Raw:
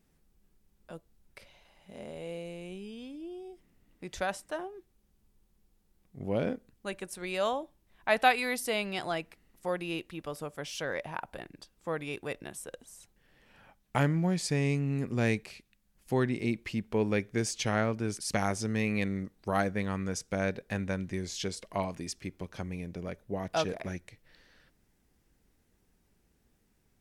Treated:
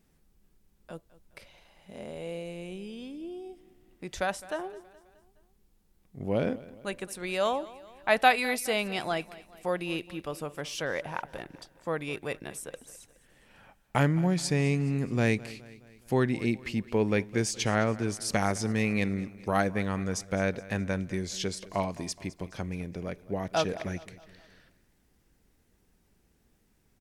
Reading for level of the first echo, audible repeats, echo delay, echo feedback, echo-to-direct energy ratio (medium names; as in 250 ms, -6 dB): -19.0 dB, 3, 210 ms, 51%, -17.5 dB